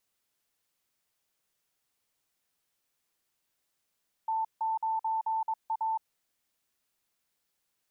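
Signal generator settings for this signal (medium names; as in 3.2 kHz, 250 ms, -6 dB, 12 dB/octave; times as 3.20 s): Morse "T9A" 22 wpm 888 Hz -27 dBFS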